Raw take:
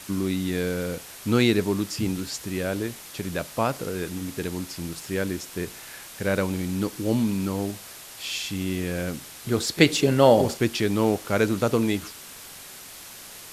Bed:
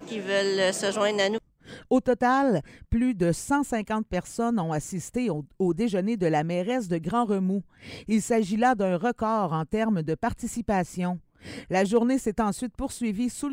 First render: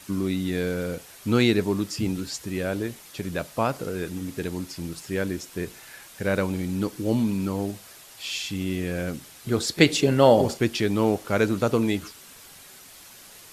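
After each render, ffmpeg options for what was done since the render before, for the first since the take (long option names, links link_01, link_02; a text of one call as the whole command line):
ffmpeg -i in.wav -af "afftdn=noise_reduction=6:noise_floor=-43" out.wav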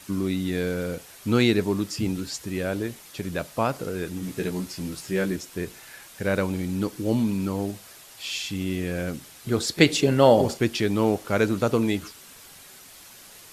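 ffmpeg -i in.wav -filter_complex "[0:a]asettb=1/sr,asplit=3[link_01][link_02][link_03];[link_01]atrim=end=4.214[link_04];[link_02]atrim=start=4.21:end=5.36,asetpts=PTS-STARTPTS,afade=type=in:duration=0.004:curve=qsin,afade=type=out:start_time=1.146:duration=0.004:curve=qsin,asplit=2[link_05][link_06];[link_06]adelay=16,volume=-3dB[link_07];[link_05][link_07]amix=inputs=2:normalize=0,atrim=end_sample=50715[link_08];[link_03]atrim=start=5.356[link_09];[link_04][link_08]acrossfade=duration=0.004:curve1=hsin:curve2=qsin[link_10];[link_10][link_09]acrossfade=duration=0.004:curve1=qsin:curve2=hsin" out.wav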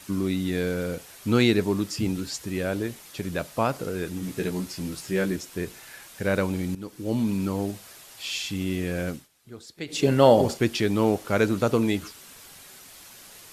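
ffmpeg -i in.wav -filter_complex "[0:a]asplit=4[link_01][link_02][link_03][link_04];[link_01]atrim=end=6.75,asetpts=PTS-STARTPTS,afade=type=out:start_time=6.746:duration=0.004:curve=hsin:silence=0.16788[link_05];[link_02]atrim=start=6.75:end=9.28,asetpts=PTS-STARTPTS,afade=type=in:duration=0.58:silence=0.16788,afade=type=out:start_time=2.34:duration=0.19:silence=0.11885[link_06];[link_03]atrim=start=9.28:end=9.87,asetpts=PTS-STARTPTS,volume=-18.5dB[link_07];[link_04]atrim=start=9.87,asetpts=PTS-STARTPTS,afade=type=in:duration=0.19:silence=0.11885[link_08];[link_05][link_06][link_07][link_08]concat=n=4:v=0:a=1" out.wav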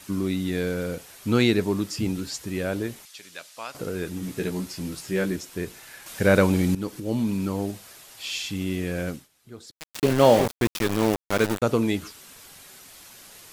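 ffmpeg -i in.wav -filter_complex "[0:a]asettb=1/sr,asplit=3[link_01][link_02][link_03];[link_01]atrim=end=3.054[link_04];[link_02]atrim=start=3.05:end=3.75,asetpts=PTS-STARTPTS,afade=type=in:duration=0.004:curve=qsin,afade=type=out:start_time=0.696:duration=0.004:curve=qsin,bandpass=frequency=5100:width_type=q:width=0.64[link_05];[link_03]atrim=start=3.746[link_06];[link_04][link_05]acrossfade=duration=0.004:curve1=hsin:curve2=qsin[link_07];[link_07][link_06]acrossfade=duration=0.004:curve1=qsin:curve2=hsin,asettb=1/sr,asplit=3[link_08][link_09][link_10];[link_08]atrim=end=6.064[link_11];[link_09]atrim=start=6.06:end=7,asetpts=PTS-STARTPTS,afade=type=in:duration=0.004:curve=qsin,afade=type=out:start_time=0.936:duration=0.004:curve=qsin,acontrast=76[link_12];[link_10]atrim=start=6.996[link_13];[link_11][link_12]acrossfade=duration=0.004:curve1=hsin:curve2=qsin[link_14];[link_14][link_13]acrossfade=duration=0.004:curve1=qsin:curve2=hsin,asettb=1/sr,asplit=3[link_15][link_16][link_17];[link_15]atrim=end=9.714[link_18];[link_16]atrim=start=9.71:end=11.62,asetpts=PTS-STARTPTS,afade=type=in:duration=0.004:curve=qsin,afade=type=out:start_time=1.906:duration=0.004:curve=qsin,aeval=exprs='val(0)*gte(abs(val(0)),0.0708)':channel_layout=same[link_19];[link_17]atrim=start=11.616[link_20];[link_18][link_19]acrossfade=duration=0.004:curve1=hsin:curve2=qsin[link_21];[link_21][link_20]acrossfade=duration=0.004:curve1=qsin:curve2=hsin" out.wav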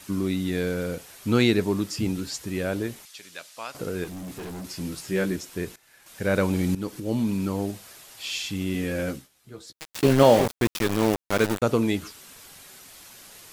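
ffmpeg -i in.wav -filter_complex "[0:a]asettb=1/sr,asplit=3[link_01][link_02][link_03];[link_01]atrim=end=4.044[link_04];[link_02]atrim=start=4.04:end=4.65,asetpts=PTS-STARTPTS,afade=type=in:duration=0.004:curve=qsin,afade=type=out:start_time=0.606:duration=0.004:curve=qsin,volume=34dB,asoftclip=hard,volume=-34dB[link_05];[link_03]atrim=start=4.646[link_06];[link_04][link_05]acrossfade=duration=0.004:curve1=hsin:curve2=qsin[link_07];[link_07][link_06]acrossfade=duration=0.004:curve1=qsin:curve2=hsin,asettb=1/sr,asplit=3[link_08][link_09][link_10];[link_08]atrim=end=8.734[link_11];[link_09]atrim=start=8.73:end=10.23,asetpts=PTS-STARTPTS,afade=type=in:duration=0.004:curve=qsin,afade=type=out:start_time=1.496:duration=0.004:curve=qsin,asplit=2[link_12][link_13];[link_13]adelay=15,volume=-5dB[link_14];[link_12][link_14]amix=inputs=2:normalize=0,atrim=end_sample=66150[link_15];[link_10]atrim=start=10.226[link_16];[link_11][link_15]acrossfade=duration=0.004:curve1=hsin:curve2=qsin[link_17];[link_17][link_16]acrossfade=duration=0.004:curve1=qsin:curve2=hsin,asplit=2[link_18][link_19];[link_18]atrim=end=5.76,asetpts=PTS-STARTPTS,afade=type=out:start_time=5.756:duration=0.004:curve=hsin:silence=0.133352[link_20];[link_19]atrim=start=5.76,asetpts=PTS-STARTPTS,afade=type=in:duration=1.2:silence=0.133352[link_21];[link_20][link_21]concat=n=2:v=0:a=1" out.wav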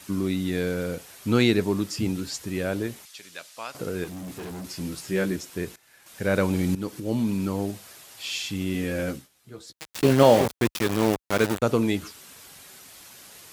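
ffmpeg -i in.wav -af "highpass=46" out.wav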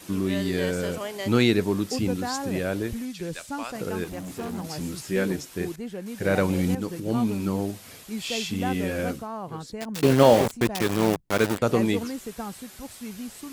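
ffmpeg -i in.wav -i bed.wav -filter_complex "[1:a]volume=-9.5dB[link_01];[0:a][link_01]amix=inputs=2:normalize=0" out.wav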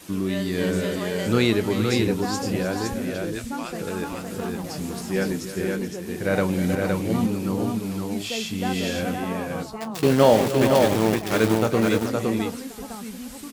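ffmpeg -i in.wav -filter_complex "[0:a]asplit=2[link_01][link_02];[link_02]adelay=27,volume=-14dB[link_03];[link_01][link_03]amix=inputs=2:normalize=0,asplit=2[link_04][link_05];[link_05]aecho=0:1:311|430|514:0.211|0.299|0.668[link_06];[link_04][link_06]amix=inputs=2:normalize=0" out.wav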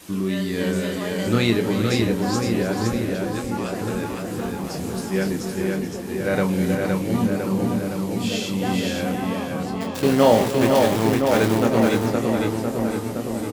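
ffmpeg -i in.wav -filter_complex "[0:a]asplit=2[link_01][link_02];[link_02]adelay=26,volume=-7dB[link_03];[link_01][link_03]amix=inputs=2:normalize=0,asplit=2[link_04][link_05];[link_05]adelay=1017,lowpass=frequency=1400:poles=1,volume=-5dB,asplit=2[link_06][link_07];[link_07]adelay=1017,lowpass=frequency=1400:poles=1,volume=0.46,asplit=2[link_08][link_09];[link_09]adelay=1017,lowpass=frequency=1400:poles=1,volume=0.46,asplit=2[link_10][link_11];[link_11]adelay=1017,lowpass=frequency=1400:poles=1,volume=0.46,asplit=2[link_12][link_13];[link_13]adelay=1017,lowpass=frequency=1400:poles=1,volume=0.46,asplit=2[link_14][link_15];[link_15]adelay=1017,lowpass=frequency=1400:poles=1,volume=0.46[link_16];[link_04][link_06][link_08][link_10][link_12][link_14][link_16]amix=inputs=7:normalize=0" out.wav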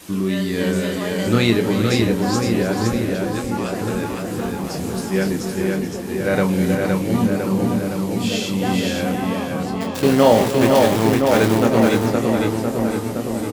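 ffmpeg -i in.wav -af "volume=3dB,alimiter=limit=-2dB:level=0:latency=1" out.wav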